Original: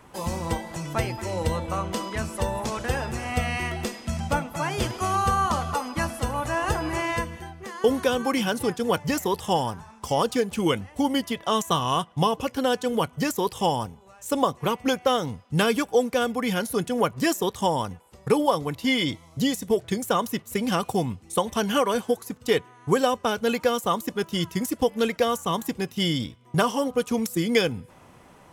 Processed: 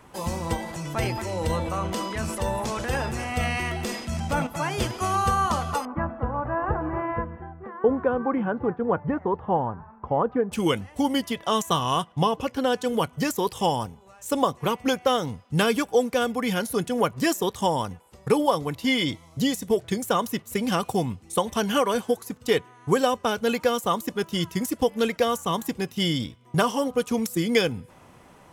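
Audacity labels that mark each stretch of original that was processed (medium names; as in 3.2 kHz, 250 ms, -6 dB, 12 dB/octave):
0.560000	4.470000	transient shaper attack -3 dB, sustain +7 dB
5.850000	10.520000	low-pass 1.5 kHz 24 dB/octave
12.120000	12.760000	treble shelf 5.5 kHz -6.5 dB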